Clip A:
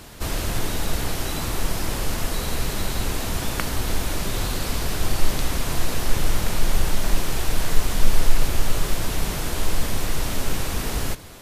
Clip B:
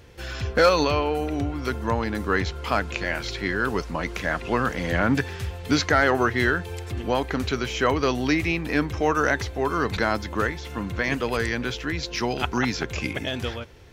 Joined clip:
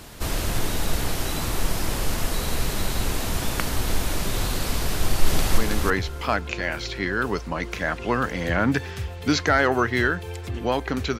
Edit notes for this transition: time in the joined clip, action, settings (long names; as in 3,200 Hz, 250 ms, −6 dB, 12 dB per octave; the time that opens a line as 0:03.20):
clip A
0:04.94–0:05.58: delay throw 320 ms, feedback 15%, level −2 dB
0:05.58: continue with clip B from 0:02.01